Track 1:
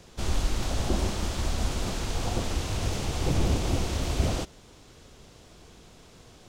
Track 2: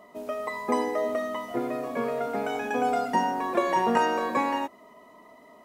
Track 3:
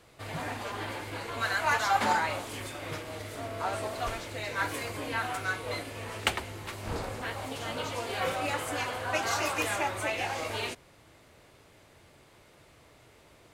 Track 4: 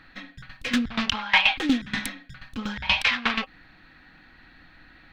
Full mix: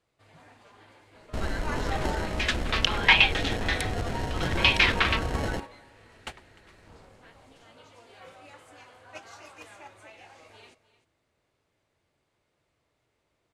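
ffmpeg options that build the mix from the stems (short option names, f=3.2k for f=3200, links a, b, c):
-filter_complex "[0:a]acrossover=split=400[a][b];[a]acompressor=threshold=-27dB:ratio=6[c];[c][b]amix=inputs=2:normalize=0,acrusher=samples=37:mix=1:aa=0.000001,adelay=1150,volume=0dB[d];[1:a]adelay=1000,volume=-13.5dB,asplit=2[e][f];[f]volume=-9.5dB[g];[2:a]volume=-9.5dB,asplit=2[h][i];[i]volume=-15.5dB[j];[3:a]highpass=800,adelay=1750,volume=1dB[k];[g][j]amix=inputs=2:normalize=0,aecho=0:1:304:1[l];[d][e][h][k][l]amix=inputs=5:normalize=0,agate=range=-9dB:threshold=-36dB:ratio=16:detection=peak,lowpass=9.2k"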